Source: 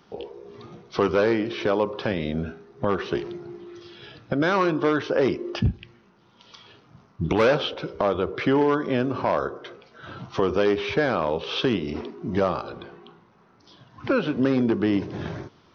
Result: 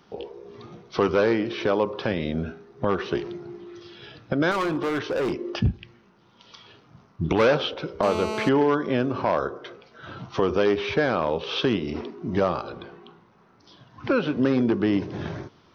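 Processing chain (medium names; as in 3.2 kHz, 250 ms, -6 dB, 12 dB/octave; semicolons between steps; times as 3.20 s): 4.51–5.40 s: hard clipper -22 dBFS, distortion -16 dB; 8.03–8.49 s: mobile phone buzz -30 dBFS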